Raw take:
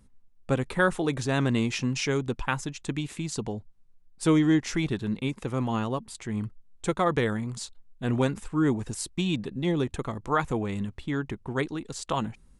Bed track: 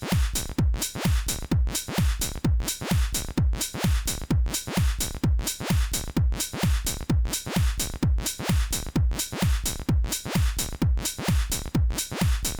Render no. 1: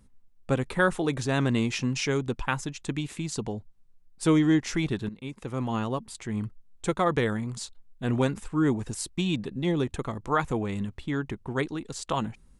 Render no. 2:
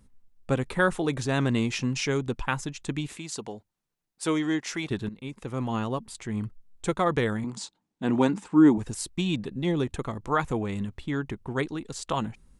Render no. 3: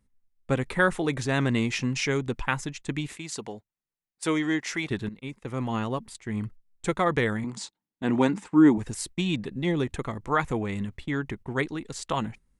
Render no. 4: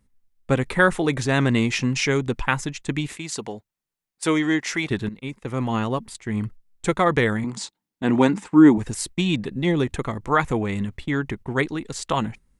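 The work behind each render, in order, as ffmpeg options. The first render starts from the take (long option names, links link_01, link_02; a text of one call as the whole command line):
ffmpeg -i in.wav -filter_complex "[0:a]asplit=2[link_01][link_02];[link_01]atrim=end=5.09,asetpts=PTS-STARTPTS,afade=type=out:start_time=5.086:duration=0.004:curve=hsin:silence=0.16788[link_03];[link_02]atrim=start=5.09,asetpts=PTS-STARTPTS,afade=type=in:duration=0.96:curve=qsin:silence=0.16788[link_04];[link_03][link_04]concat=n=2:v=0:a=1" out.wav
ffmpeg -i in.wav -filter_complex "[0:a]asettb=1/sr,asplit=3[link_01][link_02][link_03];[link_01]atrim=end=3.174[link_04];[link_02]atrim=start=3.17:end=4.91,asetpts=PTS-STARTPTS,afade=type=in:duration=0.004:curve=qsin,afade=type=out:start_time=1.736:duration=0.004:curve=qsin,highpass=frequency=470:poles=1[link_05];[link_03]atrim=start=4.906[link_06];[link_04][link_05]acrossfade=duration=0.004:curve1=hsin:curve2=qsin[link_07];[link_07][link_06]acrossfade=duration=0.004:curve1=qsin:curve2=hsin,asettb=1/sr,asplit=3[link_08][link_09][link_10];[link_08]atrim=end=7.444[link_11];[link_09]atrim=start=7.44:end=8.78,asetpts=PTS-STARTPTS,afade=type=in:duration=0.004:curve=qsin,afade=type=out:start_time=1.336:duration=0.004:curve=qsin,highpass=170,equalizer=frequency=190:width_type=q:width=4:gain=9,equalizer=frequency=300:width_type=q:width=4:gain=9,equalizer=frequency=890:width_type=q:width=4:gain=8,lowpass=frequency=8900:width=0.5412,lowpass=frequency=8900:width=1.3066[link_12];[link_10]atrim=start=8.776[link_13];[link_11][link_12]acrossfade=duration=0.004:curve1=hsin:curve2=qsin[link_14];[link_14][link_13]acrossfade=duration=0.004:curve1=qsin:curve2=hsin" out.wav
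ffmpeg -i in.wav -af "agate=range=-12dB:threshold=-41dB:ratio=16:detection=peak,equalizer=frequency=2000:width_type=o:width=0.51:gain=5.5" out.wav
ffmpeg -i in.wav -af "volume=5dB" out.wav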